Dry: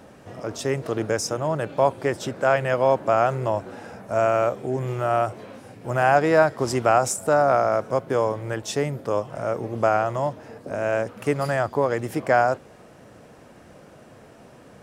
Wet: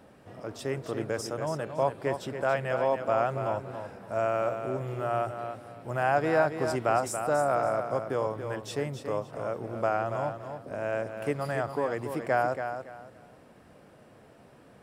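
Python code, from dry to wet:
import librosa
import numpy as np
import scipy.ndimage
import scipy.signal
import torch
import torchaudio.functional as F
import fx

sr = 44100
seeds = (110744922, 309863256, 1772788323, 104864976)

p1 = fx.peak_eq(x, sr, hz=6400.0, db=-7.0, octaves=0.38)
p2 = p1 + fx.echo_feedback(p1, sr, ms=281, feedback_pct=25, wet_db=-8.0, dry=0)
y = p2 * 10.0 ** (-7.5 / 20.0)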